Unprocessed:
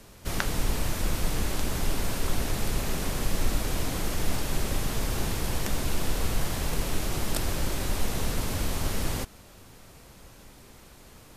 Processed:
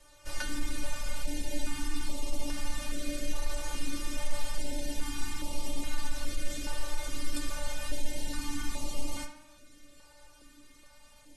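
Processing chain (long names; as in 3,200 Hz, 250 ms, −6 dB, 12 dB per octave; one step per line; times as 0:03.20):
in parallel at −6 dB: wave folding −21.5 dBFS
on the sum: low-pass filter 11,000 Hz 24 dB per octave
stiff-string resonator 290 Hz, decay 0.24 s, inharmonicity 0.002
tape delay 72 ms, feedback 61%, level −8 dB, low-pass 2,900 Hz
notch on a step sequencer 2.4 Hz 250–1,600 Hz
level +5 dB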